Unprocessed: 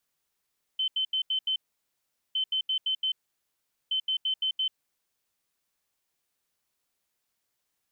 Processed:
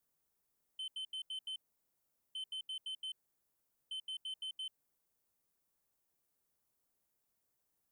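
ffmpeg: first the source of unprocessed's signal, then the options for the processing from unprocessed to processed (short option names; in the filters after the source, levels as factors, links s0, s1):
-f lavfi -i "aevalsrc='0.0596*sin(2*PI*3070*t)*clip(min(mod(mod(t,1.56),0.17),0.09-mod(mod(t,1.56),0.17))/0.005,0,1)*lt(mod(t,1.56),0.85)':d=4.68:s=44100"
-af "equalizer=f=3100:t=o:w=2.6:g=-11.5,asoftclip=type=tanh:threshold=0.0112"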